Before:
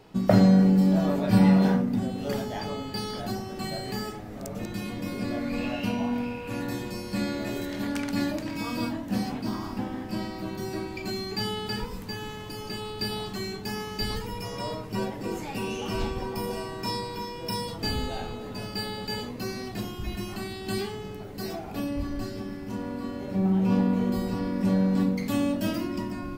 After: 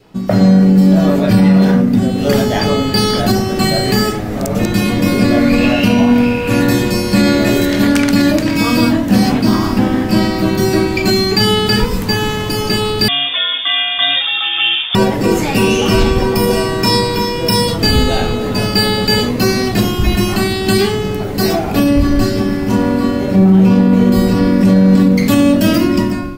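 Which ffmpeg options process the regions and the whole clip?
-filter_complex "[0:a]asettb=1/sr,asplit=3[a][b][c];[a]atrim=end=13.084[d];[b]atrim=start=13.08:end=14.95,asetpts=PTS-STARTPTS,afade=t=in:d=0.004:c=qsin,afade=t=out:st=1.866:d=0.004:c=qsin,lowshelf=f=240:g=-6.5,lowpass=f=3.1k:t=q:w=0.5098,lowpass=f=3.1k:t=q:w=0.6013,lowpass=f=3.1k:t=q:w=0.9,lowpass=f=3.1k:t=q:w=2.563,afreqshift=-3700[e];[c]atrim=start=14.946[f];[d][e]acrossfade=d=0.004:c1=hsin:c2=qsin[g];[g][f]acrossfade=d=0.004:c1=qsin:c2=hsin,adynamicequalizer=threshold=0.00398:dfrequency=870:dqfactor=2.6:tfrequency=870:tqfactor=2.6:attack=5:release=100:ratio=0.375:range=3:mode=cutabove:tftype=bell,dynaudnorm=f=180:g=5:m=14.5dB,alimiter=level_in=7dB:limit=-1dB:release=50:level=0:latency=1,volume=-1dB"

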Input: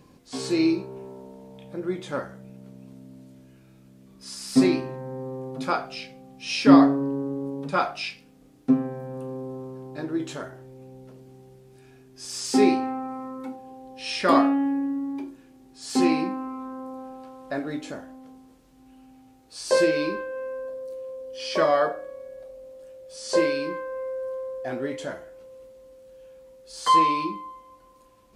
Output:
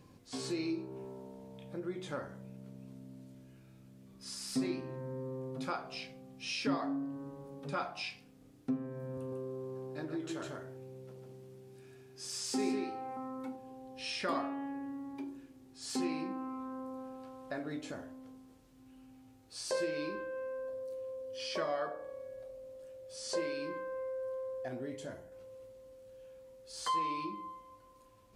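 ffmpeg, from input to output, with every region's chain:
-filter_complex "[0:a]asettb=1/sr,asplit=3[a][b][c];[a]atrim=end=9.174[d];[b]atrim=start=9.17:end=13.17,asetpts=PTS-STARTPTS,afade=t=in:d=0.004:c=qsin,afade=t=out:st=3.996:d=0.004:c=qsin,highpass=100,aecho=1:1:148:0.631,atrim=end_sample=176400[e];[c]atrim=start=13.166[f];[d][e]acrossfade=d=0.004:c1=hsin:c2=qsin[g];[g][f]acrossfade=d=0.004:c1=qsin:c2=hsin,asettb=1/sr,asplit=3[h][i][j];[h]atrim=end=24.684[k];[i]atrim=start=24.68:end=25.32,asetpts=PTS-STARTPTS,afade=t=in:d=0.004:c=qsin,afade=t=out:st=0.636:d=0.004:c=qsin,equalizer=f=1.6k:w=0.31:g=-7.5,bandreject=f=1.3k:w=12[l];[j]atrim=start=25.316[m];[k][l]acrossfade=d=0.004:c1=hsin:c2=qsin[n];[n][m]acrossfade=d=0.004:c1=qsin:c2=hsin,equalizer=f=100:w=3.5:g=10,bandreject=f=46.07:t=h:w=4,bandreject=f=92.14:t=h:w=4,bandreject=f=138.21:t=h:w=4,bandreject=f=184.28:t=h:w=4,bandreject=f=230.35:t=h:w=4,bandreject=f=276.42:t=h:w=4,bandreject=f=322.49:t=h:w=4,bandreject=f=368.56:t=h:w=4,bandreject=f=414.63:t=h:w=4,bandreject=f=460.7:t=h:w=4,bandreject=f=506.77:t=h:w=4,bandreject=f=552.84:t=h:w=4,bandreject=f=598.91:t=h:w=4,bandreject=f=644.98:t=h:w=4,bandreject=f=691.05:t=h:w=4,bandreject=f=737.12:t=h:w=4,bandreject=f=783.19:t=h:w=4,bandreject=f=829.26:t=h:w=4,bandreject=f=875.33:t=h:w=4,bandreject=f=921.4:t=h:w=4,bandreject=f=967.47:t=h:w=4,bandreject=f=1.01354k:t=h:w=4,bandreject=f=1.05961k:t=h:w=4,bandreject=f=1.10568k:t=h:w=4,bandreject=f=1.15175k:t=h:w=4,acompressor=threshold=-33dB:ratio=2,volume=-5.5dB"

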